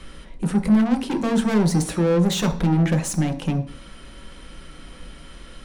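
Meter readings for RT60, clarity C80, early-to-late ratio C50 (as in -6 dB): 0.45 s, 17.5 dB, 12.5 dB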